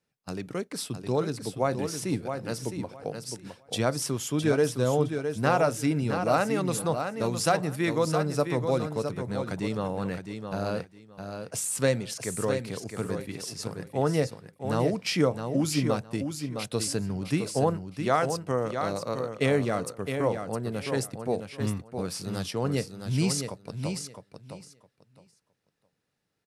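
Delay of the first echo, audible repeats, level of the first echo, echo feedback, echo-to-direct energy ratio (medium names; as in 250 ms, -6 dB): 662 ms, 2, -7.0 dB, 19%, -7.0 dB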